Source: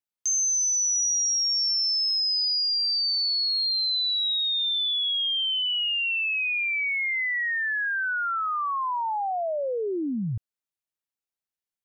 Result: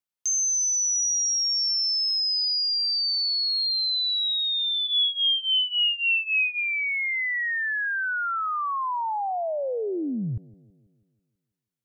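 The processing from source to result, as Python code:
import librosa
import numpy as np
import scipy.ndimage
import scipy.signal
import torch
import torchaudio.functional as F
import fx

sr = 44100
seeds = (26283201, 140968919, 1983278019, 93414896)

y = fx.peak_eq(x, sr, hz=1300.0, db=13.0, octaves=0.43, at=(3.45, 4.33))
y = fx.comb(y, sr, ms=5.9, depth=0.81, at=(4.86, 6.59), fade=0.02)
y = fx.echo_bbd(y, sr, ms=163, stages=1024, feedback_pct=52, wet_db=-22)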